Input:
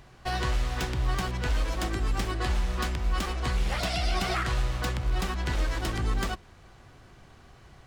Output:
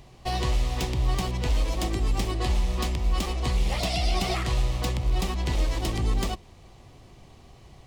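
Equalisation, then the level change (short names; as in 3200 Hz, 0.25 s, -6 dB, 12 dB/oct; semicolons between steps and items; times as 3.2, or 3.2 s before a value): bell 1500 Hz -14.5 dB 0.52 oct; +3.0 dB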